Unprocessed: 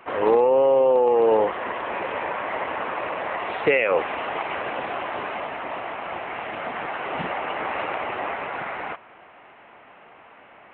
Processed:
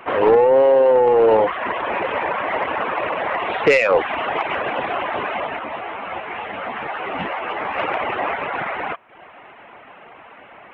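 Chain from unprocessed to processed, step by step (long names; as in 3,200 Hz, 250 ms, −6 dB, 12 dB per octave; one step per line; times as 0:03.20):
reverb reduction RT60 0.61 s
soft clipping −13.5 dBFS, distortion −19 dB
0:05.59–0:07.78: string-ensemble chorus
level +7.5 dB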